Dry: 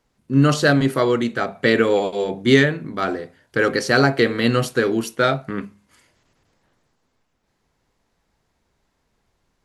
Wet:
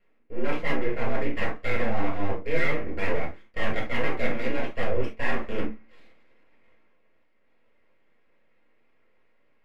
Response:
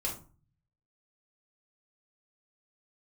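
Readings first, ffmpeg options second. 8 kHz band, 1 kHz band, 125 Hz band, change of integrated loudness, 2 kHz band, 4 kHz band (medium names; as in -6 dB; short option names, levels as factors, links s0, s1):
under -20 dB, -9.0 dB, -12.5 dB, -11.0 dB, -9.0 dB, -14.5 dB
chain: -filter_complex "[0:a]areverse,acompressor=threshold=0.0447:ratio=5,areverse,highpass=f=200:t=q:w=0.5412,highpass=f=200:t=q:w=1.307,lowpass=f=2900:t=q:w=0.5176,lowpass=f=2900:t=q:w=0.7071,lowpass=f=2900:t=q:w=1.932,afreqshift=-92,aeval=exprs='abs(val(0))':c=same,equalizer=f=250:t=o:w=1:g=10,equalizer=f=500:t=o:w=1:g=8,equalizer=f=2000:t=o:w=1:g=12[s0];[1:a]atrim=start_sample=2205,atrim=end_sample=3528[s1];[s0][s1]afir=irnorm=-1:irlink=0,volume=0.501"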